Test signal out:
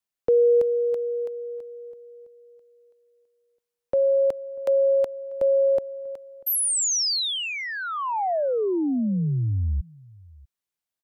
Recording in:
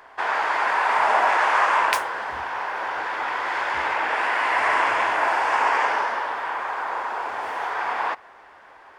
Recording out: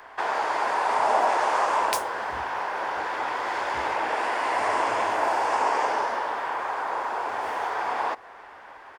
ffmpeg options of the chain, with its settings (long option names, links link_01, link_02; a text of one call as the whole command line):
ffmpeg -i in.wav -filter_complex "[0:a]acrossover=split=330|890|4000[link_01][link_02][link_03][link_04];[link_03]acompressor=threshold=-35dB:ratio=6[link_05];[link_01][link_02][link_05][link_04]amix=inputs=4:normalize=0,asplit=2[link_06][link_07];[link_07]adelay=641.4,volume=-24dB,highshelf=frequency=4000:gain=-14.4[link_08];[link_06][link_08]amix=inputs=2:normalize=0,volume=2dB" out.wav